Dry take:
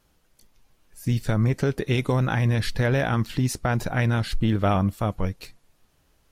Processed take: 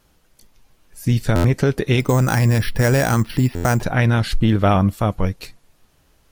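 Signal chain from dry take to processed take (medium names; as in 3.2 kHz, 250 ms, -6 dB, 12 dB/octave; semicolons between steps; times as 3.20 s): 2.00–3.83 s: careless resampling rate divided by 6×, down filtered, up hold; buffer glitch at 1.35/3.55 s, samples 512, times 7; trim +6 dB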